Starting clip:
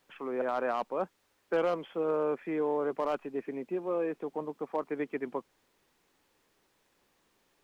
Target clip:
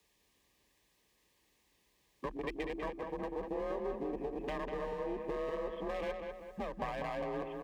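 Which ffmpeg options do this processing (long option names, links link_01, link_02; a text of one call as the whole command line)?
ffmpeg -i in.wav -filter_complex "[0:a]areverse,afwtdn=0.00794,equalizer=frequency=590:width_type=o:width=2.8:gain=-8,bandreject=frequency=60:width_type=h:width=6,bandreject=frequency=120:width_type=h:width=6,bandreject=frequency=180:width_type=h:width=6,bandreject=frequency=240:width_type=h:width=6,bandreject=frequency=300:width_type=h:width=6,acrossover=split=200|540[link_01][link_02][link_03];[link_02]alimiter=level_in=16.5dB:limit=-24dB:level=0:latency=1:release=207,volume=-16.5dB[link_04];[link_01][link_04][link_03]amix=inputs=3:normalize=0,acompressor=threshold=-51dB:ratio=6,aeval=exprs='clip(val(0),-1,0.00141)':channel_layout=same,afreqshift=32,asuperstop=centerf=1400:order=4:qfactor=3.9,asplit=2[link_05][link_06];[link_06]adelay=196,lowpass=frequency=2800:poles=1,volume=-4.5dB,asplit=2[link_07][link_08];[link_08]adelay=196,lowpass=frequency=2800:poles=1,volume=0.49,asplit=2[link_09][link_10];[link_10]adelay=196,lowpass=frequency=2800:poles=1,volume=0.49,asplit=2[link_11][link_12];[link_12]adelay=196,lowpass=frequency=2800:poles=1,volume=0.49,asplit=2[link_13][link_14];[link_14]adelay=196,lowpass=frequency=2800:poles=1,volume=0.49,asplit=2[link_15][link_16];[link_16]adelay=196,lowpass=frequency=2800:poles=1,volume=0.49[link_17];[link_07][link_09][link_11][link_13][link_15][link_17]amix=inputs=6:normalize=0[link_18];[link_05][link_18]amix=inputs=2:normalize=0,volume=17dB" out.wav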